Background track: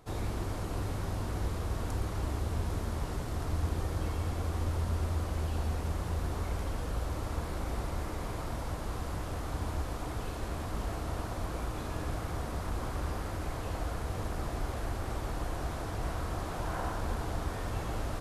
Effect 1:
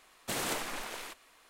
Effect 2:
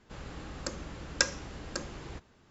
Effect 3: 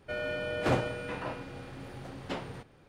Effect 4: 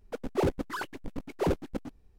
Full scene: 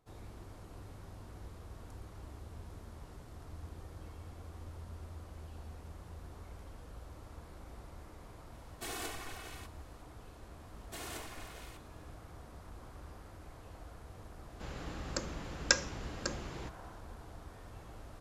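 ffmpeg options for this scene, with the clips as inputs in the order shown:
ffmpeg -i bed.wav -i cue0.wav -i cue1.wav -filter_complex "[1:a]asplit=2[link_01][link_02];[0:a]volume=-15.5dB[link_03];[link_01]aecho=1:1:2.7:0.92[link_04];[link_02]aecho=1:1:2.8:0.46[link_05];[link_04]atrim=end=1.49,asetpts=PTS-STARTPTS,volume=-10dB,afade=type=in:duration=0.004:curve=hsin,afade=type=out:start_time=1.486:duration=0.004:curve=hsin,adelay=8530[link_06];[link_05]atrim=end=1.49,asetpts=PTS-STARTPTS,volume=-11.5dB,afade=type=in:duration=0.004:curve=hsin,afade=type=out:start_time=1.486:duration=0.004:curve=hsin,adelay=10640[link_07];[2:a]atrim=end=2.5,asetpts=PTS-STARTPTS,volume=-0.5dB,afade=type=in:duration=0.004:curve=hsin,afade=type=out:start_time=2.496:duration=0.004:curve=hsin,adelay=14500[link_08];[link_03][link_06][link_07][link_08]amix=inputs=4:normalize=0" out.wav

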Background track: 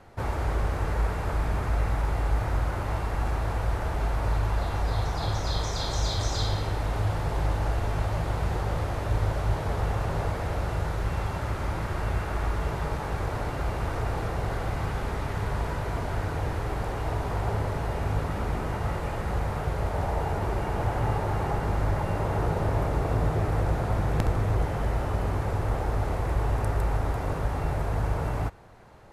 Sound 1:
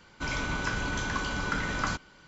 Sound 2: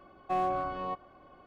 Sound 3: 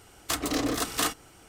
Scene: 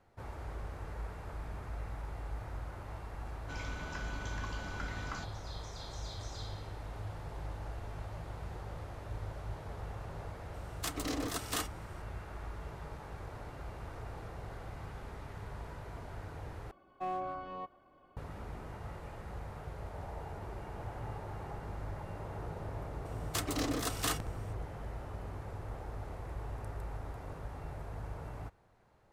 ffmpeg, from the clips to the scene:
ffmpeg -i bed.wav -i cue0.wav -i cue1.wav -i cue2.wav -filter_complex "[3:a]asplit=2[link_01][link_02];[0:a]volume=-15.5dB,asplit=2[link_03][link_04];[link_03]atrim=end=16.714[link_05];[2:a]atrim=end=1.46,asetpts=PTS-STARTPTS,volume=-7.5dB[link_06];[link_04]atrim=start=18.166[link_07];[1:a]atrim=end=2.27,asetpts=PTS-STARTPTS,volume=-12.5dB,afade=type=in:duration=0.004:curve=hsin,afade=type=out:start_time=2.266:duration=0.004:curve=hsin,adelay=3280[link_08];[link_01]atrim=end=1.48,asetpts=PTS-STARTPTS,volume=-9dB,afade=type=in:duration=0.004:curve=hsin,afade=type=out:start_time=1.476:duration=0.004:curve=hsin,adelay=10540[link_09];[link_02]atrim=end=1.48,asetpts=PTS-STARTPTS,volume=-7dB,afade=type=in:duration=0.004:curve=hsin,afade=type=out:start_time=1.476:duration=0.004:curve=hsin,adelay=23050[link_10];[link_05][link_06]acrossfade=duration=0.004:curve1=hsin:curve2=hsin[link_11];[link_11][link_07]acrossfade=duration=0.004:curve1=hsin:curve2=hsin[link_12];[link_12][link_08][link_09][link_10]amix=inputs=4:normalize=0" out.wav

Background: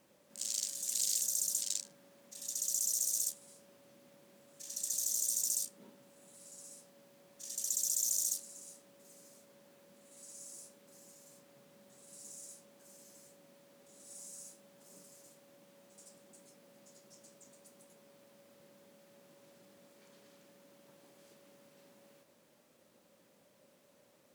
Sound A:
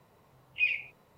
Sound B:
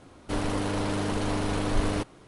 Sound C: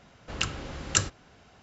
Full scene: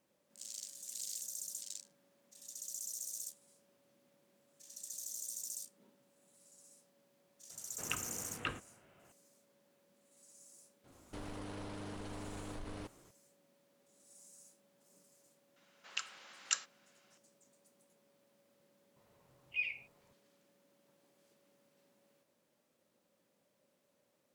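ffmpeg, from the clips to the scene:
ffmpeg -i bed.wav -i cue0.wav -i cue1.wav -i cue2.wav -filter_complex "[3:a]asplit=2[link_01][link_02];[0:a]volume=-10dB[link_03];[link_01]highpass=frequency=150:width_type=q:width=0.5412,highpass=frequency=150:width_type=q:width=1.307,lowpass=frequency=3200:width_type=q:width=0.5176,lowpass=frequency=3200:width_type=q:width=0.7071,lowpass=frequency=3200:width_type=q:width=1.932,afreqshift=-54[link_04];[2:a]acompressor=threshold=-29dB:ratio=6:attack=3.2:release=140:knee=1:detection=peak[link_05];[link_02]highpass=1200[link_06];[link_04]atrim=end=1.62,asetpts=PTS-STARTPTS,volume=-8.5dB,afade=type=in:duration=0.004:curve=hsin,afade=type=out:start_time=1.616:duration=0.004:curve=hsin,adelay=7500[link_07];[link_05]atrim=end=2.27,asetpts=PTS-STARTPTS,volume=-12dB,afade=type=in:duration=0.004:curve=hsin,afade=type=out:start_time=2.266:duration=0.004:curve=hsin,adelay=10840[link_08];[link_06]atrim=end=1.62,asetpts=PTS-STARTPTS,volume=-9.5dB,afade=type=in:duration=0.004:curve=hsin,afade=type=out:start_time=1.616:duration=0.004:curve=hsin,adelay=686196S[link_09];[1:a]atrim=end=1.17,asetpts=PTS-STARTPTS,volume=-9dB,afade=type=in:duration=0.004:curve=hsin,afade=type=out:start_time=1.166:duration=0.004:curve=hsin,adelay=18960[link_10];[link_03][link_07][link_08][link_09][link_10]amix=inputs=5:normalize=0" out.wav

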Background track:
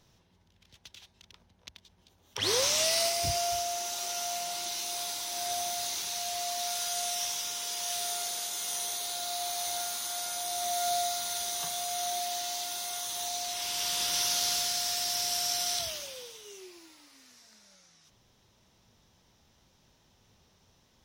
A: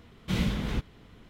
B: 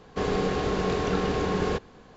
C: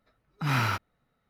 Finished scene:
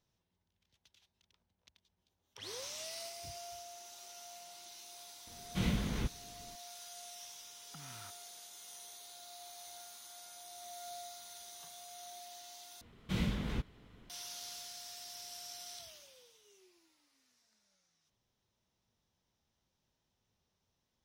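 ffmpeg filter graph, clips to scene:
ffmpeg -i bed.wav -i cue0.wav -i cue1.wav -i cue2.wav -filter_complex "[1:a]asplit=2[link_01][link_02];[0:a]volume=-17.5dB[link_03];[3:a]acompressor=threshold=-42dB:ratio=6:attack=32:release=45:knee=1:detection=peak[link_04];[link_03]asplit=2[link_05][link_06];[link_05]atrim=end=12.814[link_07];[link_02]atrim=end=1.29,asetpts=PTS-STARTPTS,volume=-6.5dB[link_08];[link_06]atrim=start=14.096[link_09];[link_01]atrim=end=1.29,asetpts=PTS-STARTPTS,volume=-5.5dB,afade=type=in:duration=0.004:curve=hsin,afade=type=out:start_time=1.286:duration=0.004:curve=hsin,adelay=5270[link_10];[link_04]atrim=end=1.29,asetpts=PTS-STARTPTS,volume=-14.5dB,afade=type=in:duration=0.004:curve=hsin,afade=type=out:start_time=1.286:duration=0.004:curve=hsin,adelay=7330[link_11];[link_07][link_08]acrossfade=duration=0.004:curve1=hsin:curve2=hsin[link_12];[link_12][link_09]acrossfade=duration=0.004:curve1=hsin:curve2=hsin[link_13];[link_13][link_10][link_11]amix=inputs=3:normalize=0" out.wav

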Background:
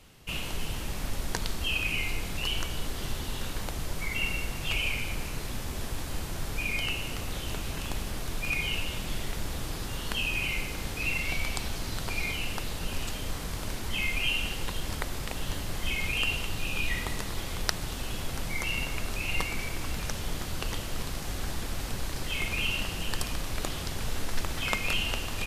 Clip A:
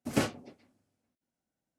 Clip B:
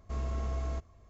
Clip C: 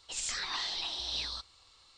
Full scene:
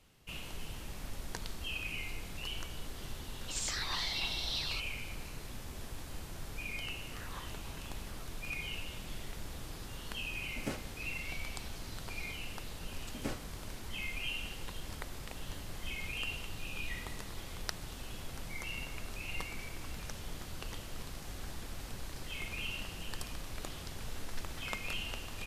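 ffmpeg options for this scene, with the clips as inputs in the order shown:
ffmpeg -i bed.wav -i cue0.wav -i cue1.wav -i cue2.wav -filter_complex "[3:a]asplit=2[link_01][link_02];[1:a]asplit=2[link_03][link_04];[0:a]volume=-10dB[link_05];[link_02]asuperpass=centerf=1200:order=4:qfactor=1.4[link_06];[link_01]atrim=end=1.97,asetpts=PTS-STARTPTS,volume=-1.5dB,afade=type=in:duration=0.004:curve=hsin,afade=type=out:start_time=1.966:duration=0.004:curve=hsin,adelay=3390[link_07];[link_06]atrim=end=1.97,asetpts=PTS-STARTPTS,volume=-7.5dB,afade=type=in:duration=0.004:curve=hsin,afade=type=out:start_time=1.966:duration=0.004:curve=hsin,adelay=6830[link_08];[link_03]atrim=end=1.78,asetpts=PTS-STARTPTS,volume=-11dB,afade=type=in:duration=0.004:curve=hsin,afade=type=out:start_time=1.776:duration=0.004:curve=hsin,adelay=463050S[link_09];[link_04]atrim=end=1.78,asetpts=PTS-STARTPTS,volume=-11.5dB,afade=type=in:duration=0.004:curve=hsin,afade=type=out:start_time=1.776:duration=0.004:curve=hsin,adelay=13080[link_10];[link_05][link_07][link_08][link_09][link_10]amix=inputs=5:normalize=0" out.wav

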